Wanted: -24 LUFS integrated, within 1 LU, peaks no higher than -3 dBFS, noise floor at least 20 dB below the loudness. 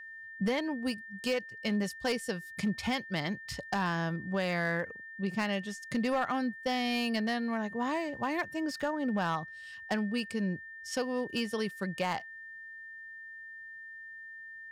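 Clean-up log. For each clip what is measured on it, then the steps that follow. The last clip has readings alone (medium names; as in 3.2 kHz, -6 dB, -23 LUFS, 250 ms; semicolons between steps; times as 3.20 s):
clipped samples 0.5%; clipping level -24.0 dBFS; steady tone 1.8 kHz; tone level -44 dBFS; loudness -33.5 LUFS; peak level -24.0 dBFS; loudness target -24.0 LUFS
-> clip repair -24 dBFS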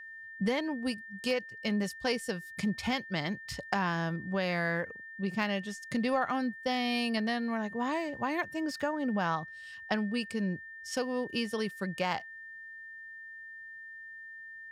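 clipped samples 0.0%; steady tone 1.8 kHz; tone level -44 dBFS
-> band-stop 1.8 kHz, Q 30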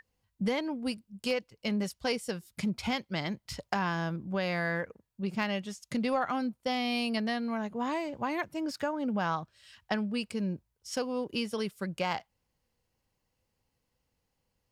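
steady tone not found; loudness -33.5 LUFS; peak level -15.0 dBFS; loudness target -24.0 LUFS
-> trim +9.5 dB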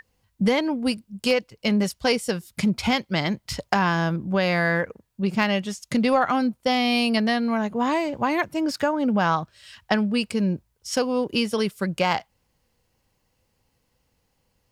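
loudness -24.0 LUFS; peak level -5.5 dBFS; noise floor -71 dBFS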